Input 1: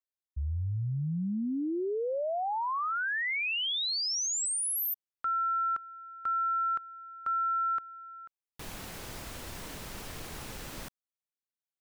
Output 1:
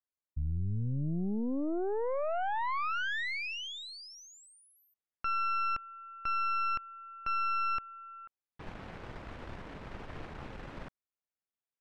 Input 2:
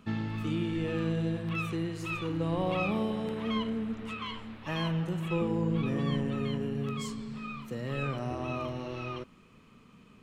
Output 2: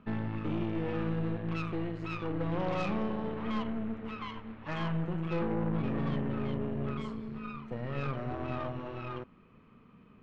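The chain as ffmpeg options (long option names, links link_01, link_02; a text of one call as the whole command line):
ffmpeg -i in.wav -af "lowpass=2000,aeval=exprs='0.126*(cos(1*acos(clip(val(0)/0.126,-1,1)))-cos(1*PI/2))+0.0126*(cos(5*acos(clip(val(0)/0.126,-1,1)))-cos(5*PI/2))+0.0178*(cos(8*acos(clip(val(0)/0.126,-1,1)))-cos(8*PI/2))':channel_layout=same,volume=-4.5dB" out.wav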